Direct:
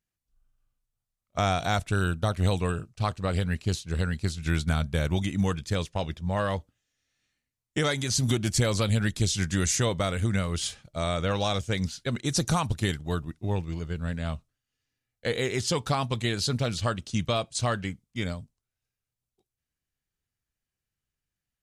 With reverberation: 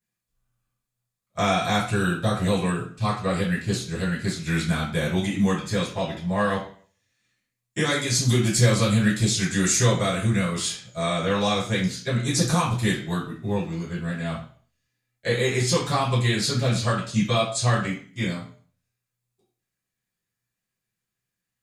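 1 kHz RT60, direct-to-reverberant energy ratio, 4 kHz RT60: 0.45 s, -10.5 dB, 0.45 s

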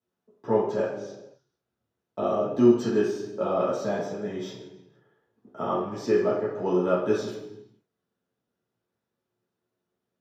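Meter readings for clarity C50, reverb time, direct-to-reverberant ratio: 3.0 dB, 1.1 s, -7.5 dB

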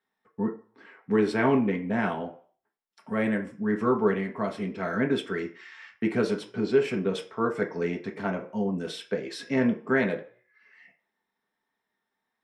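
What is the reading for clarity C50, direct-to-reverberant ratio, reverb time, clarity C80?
12.5 dB, 2.0 dB, 0.45 s, 17.0 dB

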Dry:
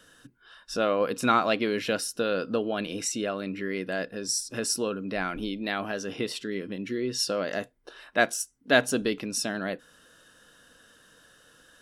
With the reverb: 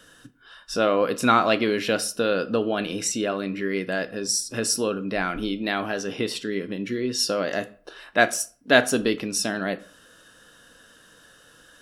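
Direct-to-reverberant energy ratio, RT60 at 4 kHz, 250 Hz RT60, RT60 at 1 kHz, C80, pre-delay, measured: 11.5 dB, 0.30 s, 0.45 s, 0.45 s, 22.0 dB, 7 ms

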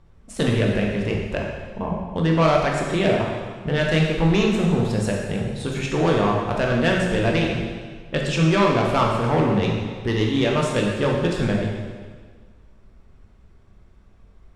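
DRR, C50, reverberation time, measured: -1.5 dB, 1.5 dB, 1.6 s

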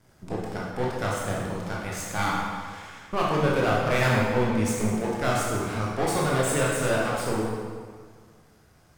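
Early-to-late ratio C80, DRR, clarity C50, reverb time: 1.5 dB, -5.0 dB, -0.5 dB, 1.8 s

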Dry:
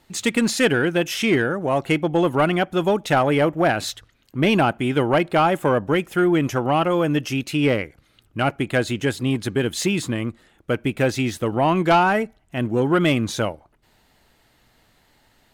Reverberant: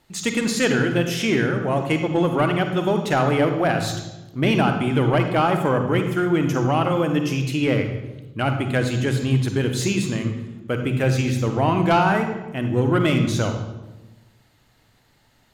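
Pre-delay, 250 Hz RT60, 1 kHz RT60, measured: 33 ms, 1.5 s, 0.95 s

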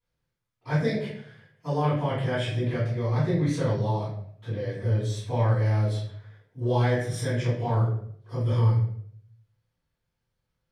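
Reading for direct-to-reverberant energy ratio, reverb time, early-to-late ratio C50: -14.5 dB, 0.65 s, 2.5 dB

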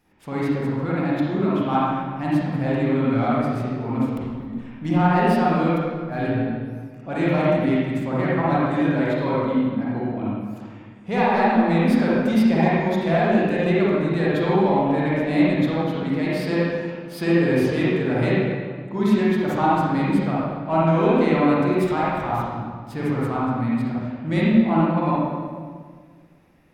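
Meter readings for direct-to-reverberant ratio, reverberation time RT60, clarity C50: -8.0 dB, 1.7 s, -5.5 dB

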